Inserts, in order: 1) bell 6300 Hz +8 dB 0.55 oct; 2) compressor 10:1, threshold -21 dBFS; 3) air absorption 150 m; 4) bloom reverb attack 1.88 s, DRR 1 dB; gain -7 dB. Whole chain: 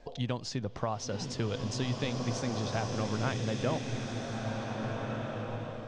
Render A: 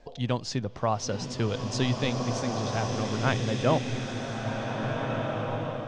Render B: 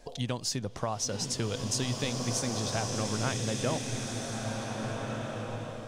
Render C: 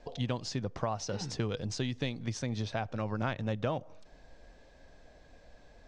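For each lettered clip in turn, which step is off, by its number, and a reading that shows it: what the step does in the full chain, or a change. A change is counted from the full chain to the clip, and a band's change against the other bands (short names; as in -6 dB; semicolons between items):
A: 2, mean gain reduction 2.5 dB; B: 3, 8 kHz band +10.0 dB; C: 4, momentary loudness spread change -2 LU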